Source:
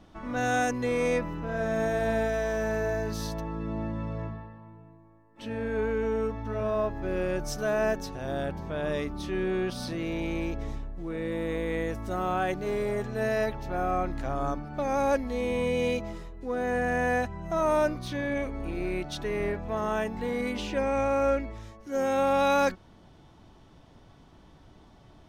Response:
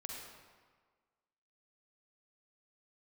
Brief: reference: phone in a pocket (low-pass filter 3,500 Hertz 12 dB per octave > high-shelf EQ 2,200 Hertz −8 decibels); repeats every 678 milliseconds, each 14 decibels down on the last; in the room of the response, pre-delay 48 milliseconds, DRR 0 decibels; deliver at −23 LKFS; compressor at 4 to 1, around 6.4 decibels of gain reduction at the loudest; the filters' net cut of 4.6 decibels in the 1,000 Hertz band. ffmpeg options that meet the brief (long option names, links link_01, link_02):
-filter_complex "[0:a]equalizer=frequency=1000:width_type=o:gain=-5,acompressor=threshold=-30dB:ratio=4,aecho=1:1:678|1356:0.2|0.0399,asplit=2[link_01][link_02];[1:a]atrim=start_sample=2205,adelay=48[link_03];[link_02][link_03]afir=irnorm=-1:irlink=0,volume=2dB[link_04];[link_01][link_04]amix=inputs=2:normalize=0,lowpass=3500,highshelf=frequency=2200:gain=-8,volume=9dB"